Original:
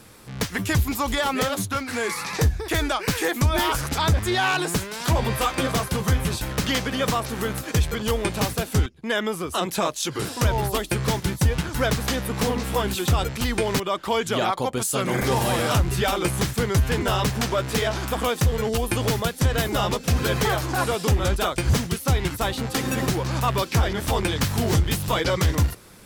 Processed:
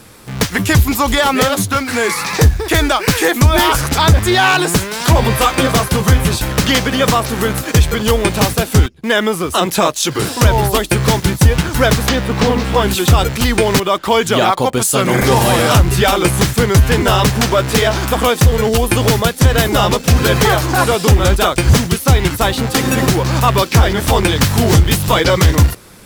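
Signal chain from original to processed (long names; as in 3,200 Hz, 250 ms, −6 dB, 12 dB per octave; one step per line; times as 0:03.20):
0:12.09–0:12.82: low-pass filter 5,200 Hz 12 dB per octave
in parallel at −8 dB: bit reduction 6 bits
on the sum: level +7.5 dB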